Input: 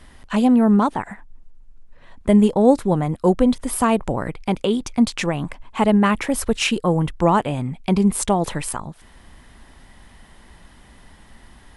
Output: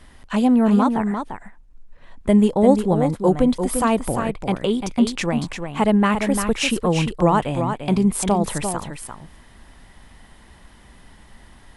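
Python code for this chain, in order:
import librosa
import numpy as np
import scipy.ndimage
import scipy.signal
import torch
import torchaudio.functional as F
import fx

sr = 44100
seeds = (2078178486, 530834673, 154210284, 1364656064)

y = x + 10.0 ** (-7.0 / 20.0) * np.pad(x, (int(346 * sr / 1000.0), 0))[:len(x)]
y = y * 10.0 ** (-1.0 / 20.0)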